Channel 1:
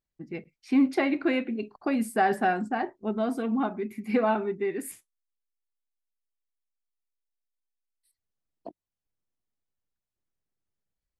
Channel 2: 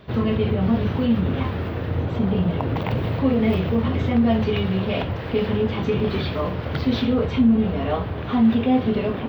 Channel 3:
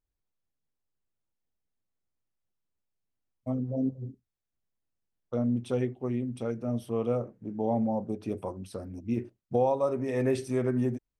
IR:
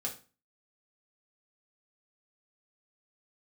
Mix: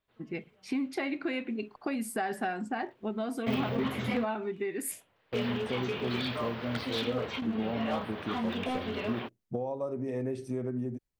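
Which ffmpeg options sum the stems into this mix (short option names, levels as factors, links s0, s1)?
-filter_complex "[0:a]acompressor=threshold=0.0282:ratio=4,adynamicequalizer=threshold=0.00398:dfrequency=1800:dqfactor=0.7:tfrequency=1800:tqfactor=0.7:attack=5:release=100:ratio=0.375:range=2.5:mode=boostabove:tftype=highshelf,volume=1[s0];[1:a]highpass=f=1200:p=1,volume=18.8,asoftclip=hard,volume=0.0531,volume=0.75[s1];[2:a]tiltshelf=f=720:g=4.5,acompressor=threshold=0.0447:ratio=6,highpass=100,volume=0.708,asplit=2[s2][s3];[s3]apad=whole_len=409566[s4];[s1][s4]sidechaingate=range=0.0316:threshold=0.00178:ratio=16:detection=peak[s5];[s0][s5][s2]amix=inputs=3:normalize=0"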